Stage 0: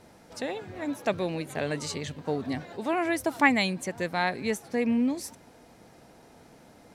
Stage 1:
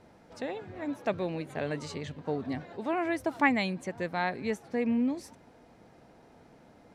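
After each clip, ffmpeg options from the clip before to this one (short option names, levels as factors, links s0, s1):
-af "lowpass=f=2600:p=1,volume=0.75"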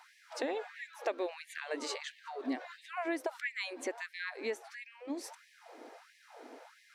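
-af "acompressor=threshold=0.0126:ratio=5,afftfilt=real='re*gte(b*sr/1024,220*pow(1700/220,0.5+0.5*sin(2*PI*1.5*pts/sr)))':imag='im*gte(b*sr/1024,220*pow(1700/220,0.5+0.5*sin(2*PI*1.5*pts/sr)))':win_size=1024:overlap=0.75,volume=2.24"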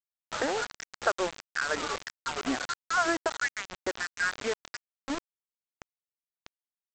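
-af "lowpass=f=1400:t=q:w=7.6,aresample=16000,acrusher=bits=5:mix=0:aa=0.000001,aresample=44100,volume=1.5"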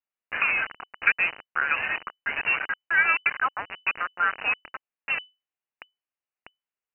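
-af "lowpass=f=2600:t=q:w=0.5098,lowpass=f=2600:t=q:w=0.6013,lowpass=f=2600:t=q:w=0.9,lowpass=f=2600:t=q:w=2.563,afreqshift=-3000,volume=1.88"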